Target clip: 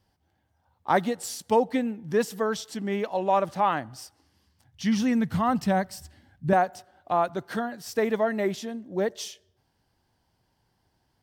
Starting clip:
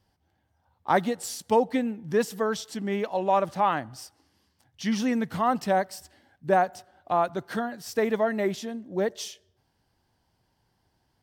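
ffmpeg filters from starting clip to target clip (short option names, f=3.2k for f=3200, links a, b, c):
-filter_complex "[0:a]asettb=1/sr,asplit=3[a][b][c];[a]atrim=end=3.964[d];[b]atrim=start=3.96:end=6.53,asetpts=PTS-STARTPTS,afade=t=in:d=0.004:c=qsin,afade=t=out:st=2.566:d=0.004:c=qsin,asubboost=boost=8:cutoff=190[e];[c]atrim=start=6.526[f];[d][e]acrossfade=d=0.004:c1=hsin:c2=qsin[g];[g][f]acrossfade=d=0.004:c1=qsin:c2=hsin"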